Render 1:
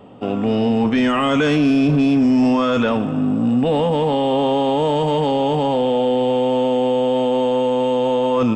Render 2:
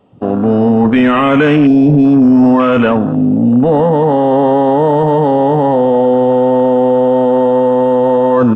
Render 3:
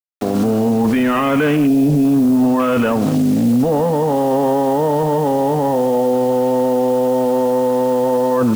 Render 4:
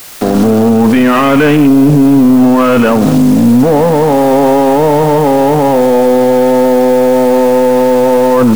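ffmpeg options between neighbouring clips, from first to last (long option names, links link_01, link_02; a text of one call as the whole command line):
ffmpeg -i in.wav -af "afwtdn=0.0501,volume=7.5dB" out.wav
ffmpeg -i in.wav -af "acrusher=bits=4:mix=0:aa=0.000001,alimiter=limit=-8.5dB:level=0:latency=1:release=22" out.wav
ffmpeg -i in.wav -af "aeval=exprs='val(0)+0.5*0.0562*sgn(val(0))':channel_layout=same,aeval=exprs='0.422*(cos(1*acos(clip(val(0)/0.422,-1,1)))-cos(1*PI/2))+0.0237*(cos(4*acos(clip(val(0)/0.422,-1,1)))-cos(4*PI/2))':channel_layout=same,volume=6.5dB" out.wav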